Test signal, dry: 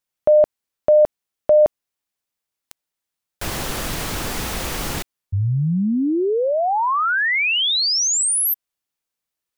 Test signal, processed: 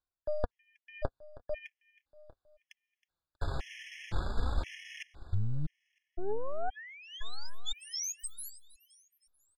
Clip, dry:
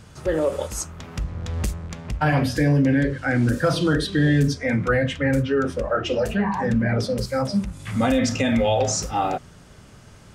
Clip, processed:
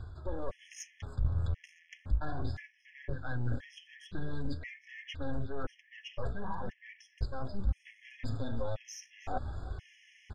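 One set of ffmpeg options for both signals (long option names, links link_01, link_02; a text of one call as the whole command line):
ffmpeg -i in.wav -filter_complex "[0:a]lowpass=3400,aeval=exprs='0.376*(cos(1*acos(clip(val(0)/0.376,-1,1)))-cos(1*PI/2))+0.0335*(cos(3*acos(clip(val(0)/0.376,-1,1)))-cos(3*PI/2))+0.0531*(cos(4*acos(clip(val(0)/0.376,-1,1)))-cos(4*PI/2))+0.015*(cos(5*acos(clip(val(0)/0.376,-1,1)))-cos(5*PI/2))+0.00668*(cos(8*acos(clip(val(0)/0.376,-1,1)))-cos(8*PI/2))':channel_layout=same,alimiter=limit=-14.5dB:level=0:latency=1:release=11,areverse,acompressor=threshold=-35dB:ratio=8:attack=11:release=564:knee=1:detection=peak,areverse,lowshelf=frequency=120:width_type=q:width=1.5:gain=10.5,flanger=delay=2.7:depth=4.8:regen=37:speed=0.41:shape=sinusoidal,aeval=exprs='0.112*(cos(1*acos(clip(val(0)/0.112,-1,1)))-cos(1*PI/2))+0.00316*(cos(4*acos(clip(val(0)/0.112,-1,1)))-cos(4*PI/2))':channel_layout=same,asplit=2[link_01][link_02];[link_02]aecho=0:1:319|638|957|1276:0.112|0.055|0.0269|0.0132[link_03];[link_01][link_03]amix=inputs=2:normalize=0,afftfilt=real='re*gt(sin(2*PI*0.97*pts/sr)*(1-2*mod(floor(b*sr/1024/1700),2)),0)':imag='im*gt(sin(2*PI*0.97*pts/sr)*(1-2*mod(floor(b*sr/1024/1700),2)),0)':win_size=1024:overlap=0.75,volume=5dB" out.wav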